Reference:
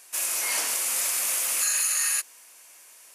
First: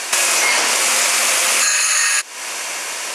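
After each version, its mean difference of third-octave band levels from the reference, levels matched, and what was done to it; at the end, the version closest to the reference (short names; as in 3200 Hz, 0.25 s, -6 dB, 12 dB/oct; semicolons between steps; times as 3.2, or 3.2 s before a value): 8.5 dB: air absorption 78 m; compressor 16:1, threshold -45 dBFS, peak gain reduction 18 dB; low shelf 95 Hz -8 dB; maximiser +33.5 dB; gain -1 dB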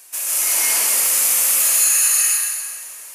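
4.5 dB: HPF 100 Hz; high shelf 10000 Hz +9.5 dB; in parallel at +1 dB: limiter -20.5 dBFS, peak gain reduction 11.5 dB; on the sum: plate-style reverb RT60 1.9 s, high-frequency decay 0.9×, pre-delay 0.11 s, DRR -6 dB; gain -4.5 dB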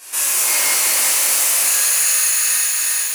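5.5 dB: in parallel at -4 dB: crossover distortion -46 dBFS; on the sum: thinning echo 0.364 s, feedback 31%, high-pass 180 Hz, level -3.5 dB; compressor 8:1, threshold -32 dBFS, peak gain reduction 15.5 dB; shimmer reverb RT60 1.8 s, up +12 st, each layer -8 dB, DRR -11.5 dB; gain +6 dB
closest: second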